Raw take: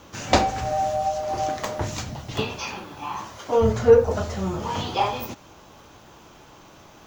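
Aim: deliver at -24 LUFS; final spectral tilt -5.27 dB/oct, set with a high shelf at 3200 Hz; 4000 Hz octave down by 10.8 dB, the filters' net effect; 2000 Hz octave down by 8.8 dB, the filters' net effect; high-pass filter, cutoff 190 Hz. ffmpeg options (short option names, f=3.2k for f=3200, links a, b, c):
-af "highpass=190,equalizer=f=2k:t=o:g=-7.5,highshelf=f=3.2k:g=-8,equalizer=f=4k:t=o:g=-5.5,volume=1dB"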